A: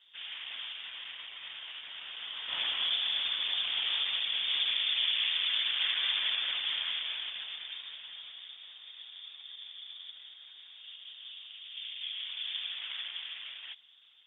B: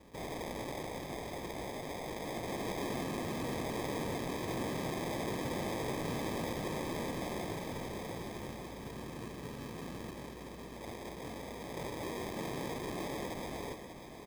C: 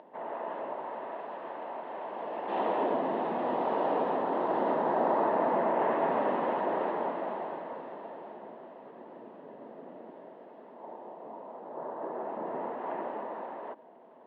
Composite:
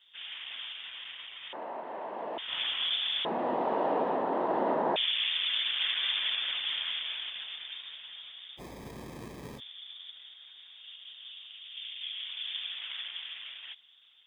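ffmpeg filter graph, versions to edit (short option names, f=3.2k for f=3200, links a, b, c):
-filter_complex "[2:a]asplit=2[a][b];[0:a]asplit=4[c][d][e][f];[c]atrim=end=1.532[g];[a]atrim=start=1.528:end=2.382[h];[d]atrim=start=2.378:end=3.252[i];[b]atrim=start=3.248:end=4.962[j];[e]atrim=start=4.958:end=8.61[k];[1:a]atrim=start=8.57:end=9.61[l];[f]atrim=start=9.57[m];[g][h]acrossfade=d=0.004:c1=hsin:c2=hsin[n];[n][i]acrossfade=d=0.004:c1=hsin:c2=hsin[o];[o][j]acrossfade=d=0.004:c1=hsin:c2=hsin[p];[p][k]acrossfade=d=0.004:c1=hsin:c2=hsin[q];[q][l]acrossfade=d=0.04:c1=tri:c2=tri[r];[r][m]acrossfade=d=0.04:c1=tri:c2=tri"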